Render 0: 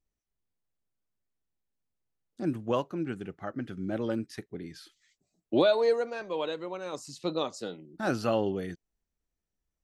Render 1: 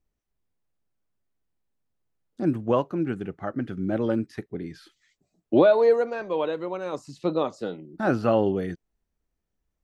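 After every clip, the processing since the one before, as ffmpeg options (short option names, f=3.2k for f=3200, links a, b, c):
-filter_complex "[0:a]acrossover=split=2800[a][b];[b]acompressor=threshold=-48dB:ratio=4:attack=1:release=60[c];[a][c]amix=inputs=2:normalize=0,highshelf=f=2.7k:g=-9,volume=6.5dB"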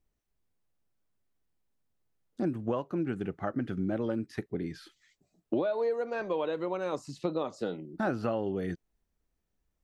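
-af "acompressor=threshold=-27dB:ratio=8"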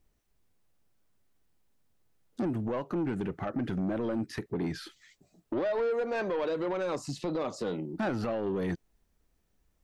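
-af "alimiter=level_in=2.5dB:limit=-24dB:level=0:latency=1:release=89,volume=-2.5dB,asoftclip=type=tanh:threshold=-33dB,volume=7.5dB"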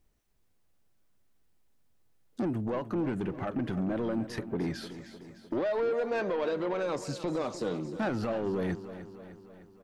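-af "aecho=1:1:304|608|912|1216|1520|1824:0.224|0.13|0.0753|0.0437|0.0253|0.0147"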